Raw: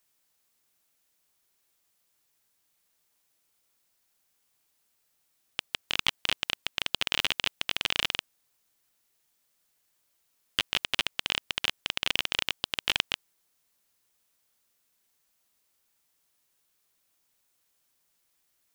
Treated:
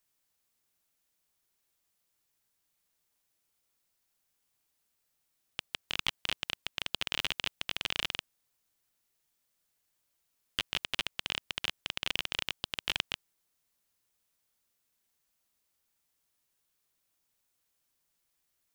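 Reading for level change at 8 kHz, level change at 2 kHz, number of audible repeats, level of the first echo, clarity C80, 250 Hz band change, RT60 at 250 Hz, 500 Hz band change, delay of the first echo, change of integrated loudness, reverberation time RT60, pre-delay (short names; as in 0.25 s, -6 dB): -5.5 dB, -5.5 dB, none, none, none, -4.0 dB, none, -5.0 dB, none, -5.5 dB, none, none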